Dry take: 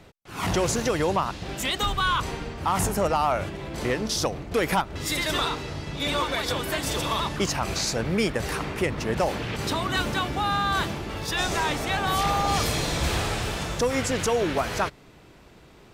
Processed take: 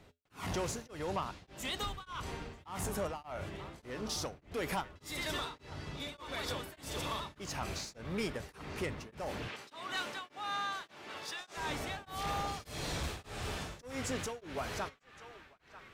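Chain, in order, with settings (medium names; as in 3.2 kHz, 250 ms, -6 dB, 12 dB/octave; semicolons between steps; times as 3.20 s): 9.48–11.57 s: frequency weighting A; on a send: band-passed feedback delay 939 ms, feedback 72%, band-pass 1.8 kHz, level -15 dB; on the sum: saturation -19 dBFS, distortion -17 dB; feedback comb 84 Hz, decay 0.25 s, harmonics odd, mix 50%; tremolo of two beating tones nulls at 1.7 Hz; trim -4.5 dB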